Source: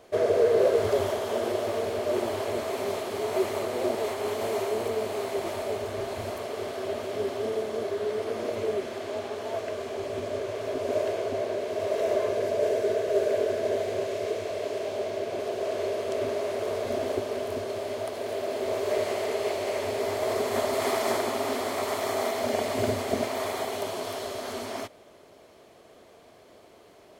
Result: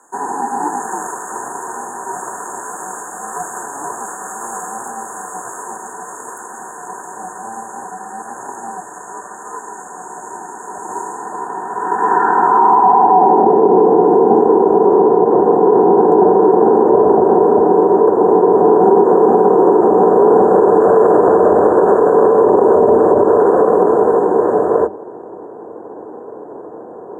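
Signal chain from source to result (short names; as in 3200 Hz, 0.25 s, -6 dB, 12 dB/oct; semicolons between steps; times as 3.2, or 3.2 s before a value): brick-wall FIR band-stop 1500–6700 Hz; notches 60/120/180/240/300/360/420/480/540 Hz; ring modulator 280 Hz; thirty-one-band EQ 100 Hz -5 dB, 250 Hz +9 dB, 12500 Hz -9 dB; frequency shift +66 Hz; band-pass sweep 5300 Hz -> 470 Hz, 11.13–13.61; maximiser +31.5 dB; gain -1 dB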